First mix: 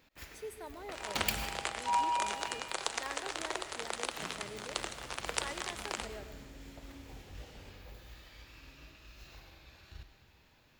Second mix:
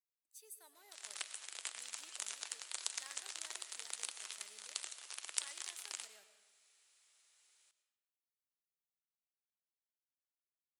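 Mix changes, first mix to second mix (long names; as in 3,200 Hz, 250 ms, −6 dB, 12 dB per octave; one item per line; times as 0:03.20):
first sound: muted
master: add first-order pre-emphasis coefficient 0.97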